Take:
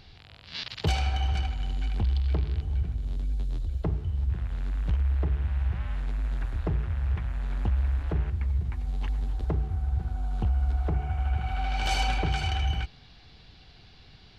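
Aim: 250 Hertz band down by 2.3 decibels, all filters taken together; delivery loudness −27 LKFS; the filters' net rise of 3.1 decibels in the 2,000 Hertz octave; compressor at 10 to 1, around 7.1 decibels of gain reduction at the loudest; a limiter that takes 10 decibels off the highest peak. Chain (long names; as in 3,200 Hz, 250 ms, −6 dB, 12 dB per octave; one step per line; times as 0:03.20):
parametric band 250 Hz −4 dB
parametric band 2,000 Hz +4 dB
downward compressor 10 to 1, threshold −29 dBFS
level +9.5 dB
brickwall limiter −17.5 dBFS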